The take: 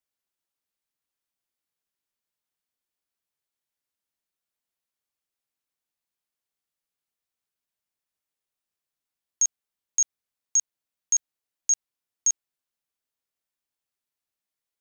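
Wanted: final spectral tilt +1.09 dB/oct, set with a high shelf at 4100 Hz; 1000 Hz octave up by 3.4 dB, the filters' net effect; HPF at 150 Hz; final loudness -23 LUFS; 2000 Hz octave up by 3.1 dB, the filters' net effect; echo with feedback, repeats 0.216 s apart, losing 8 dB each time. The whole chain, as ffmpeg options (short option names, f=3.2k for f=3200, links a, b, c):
-af "highpass=150,equalizer=f=1k:t=o:g=3.5,equalizer=f=2k:t=o:g=4,highshelf=f=4.1k:g=-4.5,aecho=1:1:216|432|648|864|1080:0.398|0.159|0.0637|0.0255|0.0102,volume=6dB"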